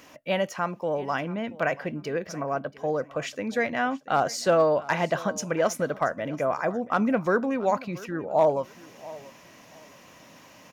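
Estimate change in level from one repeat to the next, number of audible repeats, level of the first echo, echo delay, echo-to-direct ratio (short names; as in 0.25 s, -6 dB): -13.0 dB, 2, -19.5 dB, 0.681 s, -19.5 dB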